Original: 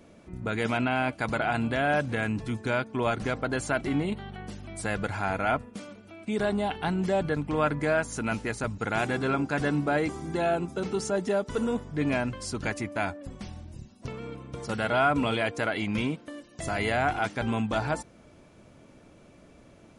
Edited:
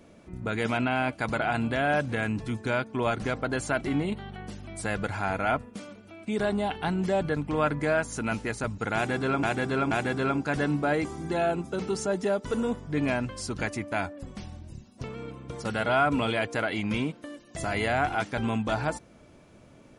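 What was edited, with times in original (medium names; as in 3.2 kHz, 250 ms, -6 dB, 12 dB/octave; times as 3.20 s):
8.95–9.43 s: loop, 3 plays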